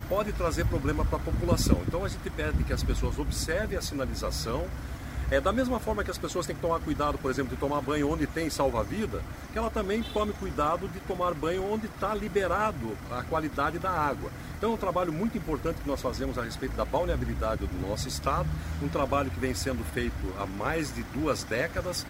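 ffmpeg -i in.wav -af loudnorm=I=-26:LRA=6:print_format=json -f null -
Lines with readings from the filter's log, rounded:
"input_i" : "-30.3",
"input_tp" : "-6.3",
"input_lra" : "1.7",
"input_thresh" : "-40.3",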